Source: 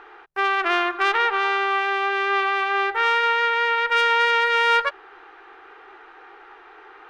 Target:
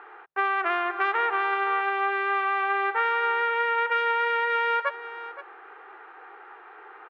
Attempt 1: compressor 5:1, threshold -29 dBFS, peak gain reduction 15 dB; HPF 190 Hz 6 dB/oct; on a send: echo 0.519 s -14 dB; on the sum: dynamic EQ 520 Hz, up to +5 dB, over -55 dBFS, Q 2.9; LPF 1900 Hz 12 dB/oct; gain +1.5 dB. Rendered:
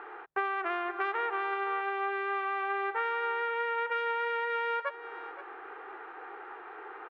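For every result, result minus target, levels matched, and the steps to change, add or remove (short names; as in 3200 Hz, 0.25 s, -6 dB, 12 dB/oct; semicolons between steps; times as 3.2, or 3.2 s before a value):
compressor: peak gain reduction +8.5 dB; 250 Hz band +4.5 dB
change: compressor 5:1, threshold -18.5 dBFS, peak gain reduction 6.5 dB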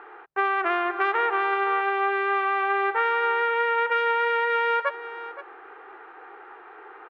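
250 Hz band +3.5 dB
add after LPF: low shelf 350 Hz -10.5 dB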